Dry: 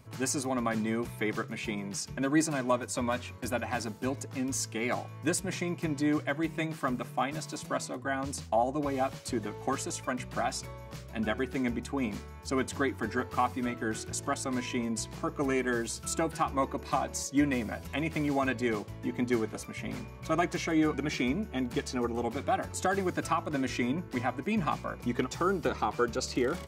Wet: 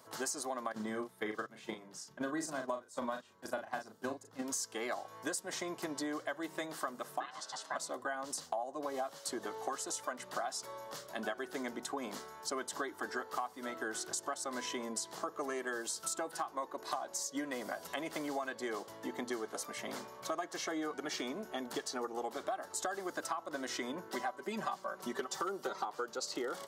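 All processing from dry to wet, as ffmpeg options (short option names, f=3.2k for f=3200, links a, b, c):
-filter_complex "[0:a]asettb=1/sr,asplit=3[a][b][c];[a]atrim=end=0.724[d];[b]atrim=start=0.72:end=4.42,asetpts=PTS-STARTPTS,afade=t=in:d=0.004:c=qsin,afade=t=out:st=3.696:d=0.004:c=qsin,agate=range=-14dB:threshold=-33dB:ratio=16:release=100:detection=peak,bass=f=250:g=10,treble=f=4k:g=-3,asplit=2[e][f];[f]adelay=37,volume=-6.5dB[g];[e][g]amix=inputs=2:normalize=0,atrim=end_sample=163170[h];[c]atrim=start=4.416[i];[d][h]acrossfade=d=0.004:c1=hsin:c2=qsin[j];[j][i]acrossfade=d=0.004:c1=qsin:c2=hsin,asettb=1/sr,asplit=3[k][l][m];[k]atrim=end=7.204[n];[l]atrim=start=7.2:end=7.76,asetpts=PTS-STARTPTS,afade=t=in:d=0.004:c=qsin,afade=t=out:st=0.556:d=0.004:c=qsin,highpass=420,lowpass=5.9k,aeval=exprs='val(0)*sin(2*PI*460*n/s)':c=same[o];[m]atrim=start=7.756[p];[n][o]acrossfade=d=0.004:c1=hsin:c2=qsin[q];[q][p]acrossfade=d=0.004:c1=qsin:c2=hsin,asettb=1/sr,asplit=3[r][s][t];[r]atrim=end=24.104[u];[s]atrim=start=24.1:end=25.85,asetpts=PTS-STARTPTS,afade=t=in:d=0.004:c=qsin,afade=t=out:st=1.746:d=0.004:c=qsin,aecho=1:1:5.2:0.77,atrim=end_sample=77175,asoftclip=type=hard:threshold=-17.5dB[v];[t]atrim=start=25.846[w];[u][v]acrossfade=d=0.004:c1=hsin:c2=qsin[x];[x][w]acrossfade=d=0.004:c1=qsin:c2=hsin,highpass=510,equalizer=f=2.4k:t=o:w=0.4:g=-14.5,acompressor=threshold=-40dB:ratio=6,volume=4.5dB"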